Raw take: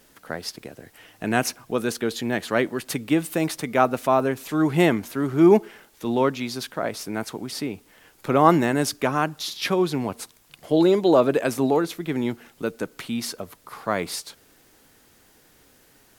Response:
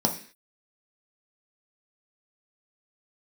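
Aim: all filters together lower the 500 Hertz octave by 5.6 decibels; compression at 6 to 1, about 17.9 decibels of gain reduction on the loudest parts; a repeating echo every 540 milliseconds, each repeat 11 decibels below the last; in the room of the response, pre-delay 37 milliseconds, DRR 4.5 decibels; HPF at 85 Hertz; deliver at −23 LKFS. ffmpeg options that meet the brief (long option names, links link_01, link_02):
-filter_complex "[0:a]highpass=85,equalizer=frequency=500:width_type=o:gain=-8,acompressor=threshold=-34dB:ratio=6,aecho=1:1:540|1080|1620:0.282|0.0789|0.0221,asplit=2[link_01][link_02];[1:a]atrim=start_sample=2205,adelay=37[link_03];[link_02][link_03]afir=irnorm=-1:irlink=0,volume=-15.5dB[link_04];[link_01][link_04]amix=inputs=2:normalize=0,volume=12dB"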